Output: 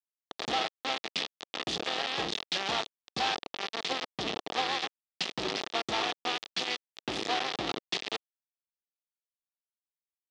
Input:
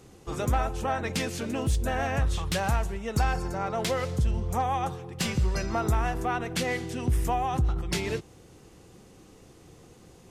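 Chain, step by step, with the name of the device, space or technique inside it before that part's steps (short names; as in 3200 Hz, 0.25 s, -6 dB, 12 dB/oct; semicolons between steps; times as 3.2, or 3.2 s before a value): hand-held game console (bit-crush 4-bit; speaker cabinet 420–4900 Hz, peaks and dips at 560 Hz -7 dB, 990 Hz -7 dB, 1500 Hz -9 dB, 2200 Hz -4 dB, 3500 Hz +4 dB)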